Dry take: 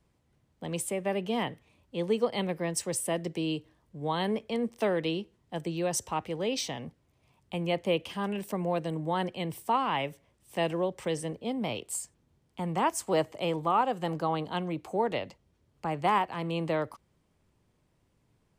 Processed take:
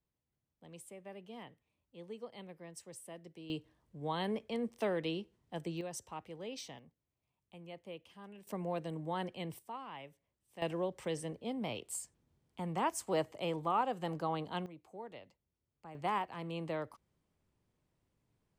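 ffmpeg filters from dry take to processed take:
ffmpeg -i in.wav -af "asetnsamples=nb_out_samples=441:pad=0,asendcmd='3.5 volume volume -6.5dB;5.81 volume volume -13.5dB;6.79 volume volume -20dB;8.47 volume volume -8dB;9.59 volume volume -18dB;10.62 volume volume -6.5dB;14.66 volume volume -19dB;15.95 volume volume -9dB',volume=-19dB" out.wav

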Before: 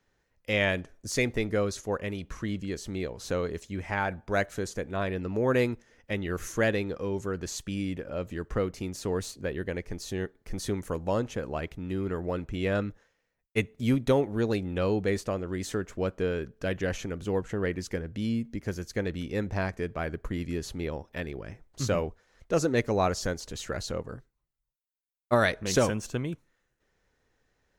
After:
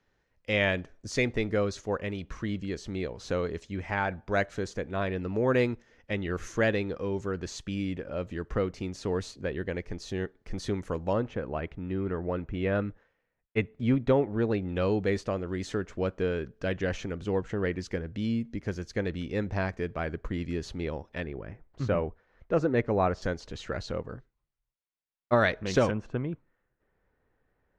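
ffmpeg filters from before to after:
ffmpeg -i in.wav -af "asetnsamples=nb_out_samples=441:pad=0,asendcmd='11.13 lowpass f 2500;14.69 lowpass f 5200;21.24 lowpass f 2100;23.22 lowpass f 3800;25.91 lowpass f 1700',lowpass=5200" out.wav

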